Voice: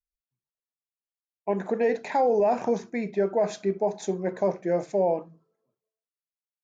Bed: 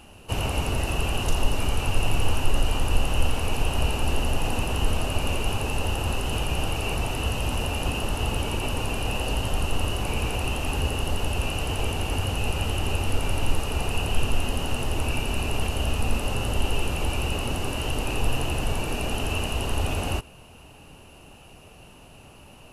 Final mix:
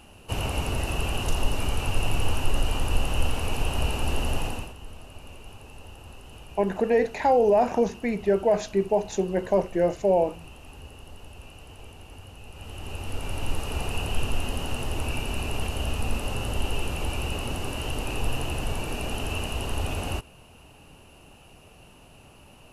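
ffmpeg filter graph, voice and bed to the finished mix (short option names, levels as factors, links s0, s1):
-filter_complex "[0:a]adelay=5100,volume=1.33[s0];[1:a]volume=4.73,afade=t=out:st=4.38:d=0.36:silence=0.149624,afade=t=in:st=12.5:d=1.24:silence=0.16788[s1];[s0][s1]amix=inputs=2:normalize=0"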